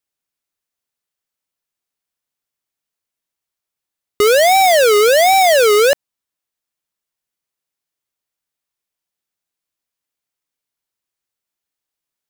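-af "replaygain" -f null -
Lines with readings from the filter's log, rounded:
track_gain = -4.9 dB
track_peak = 0.212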